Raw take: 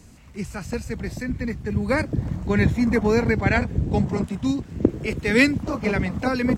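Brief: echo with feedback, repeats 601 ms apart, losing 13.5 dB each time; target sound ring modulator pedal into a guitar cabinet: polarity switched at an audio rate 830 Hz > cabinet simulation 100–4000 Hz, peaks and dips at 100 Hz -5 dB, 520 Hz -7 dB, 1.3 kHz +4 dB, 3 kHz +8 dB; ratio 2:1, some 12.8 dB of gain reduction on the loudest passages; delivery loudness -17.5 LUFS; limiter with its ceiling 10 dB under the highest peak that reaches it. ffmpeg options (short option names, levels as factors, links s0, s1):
-af "acompressor=threshold=0.0141:ratio=2,alimiter=level_in=1.12:limit=0.0631:level=0:latency=1,volume=0.891,aecho=1:1:601|1202:0.211|0.0444,aeval=exprs='val(0)*sgn(sin(2*PI*830*n/s))':c=same,highpass=100,equalizer=f=100:t=q:w=4:g=-5,equalizer=f=520:t=q:w=4:g=-7,equalizer=f=1300:t=q:w=4:g=4,equalizer=f=3000:t=q:w=4:g=8,lowpass=f=4000:w=0.5412,lowpass=f=4000:w=1.3066,volume=5.96"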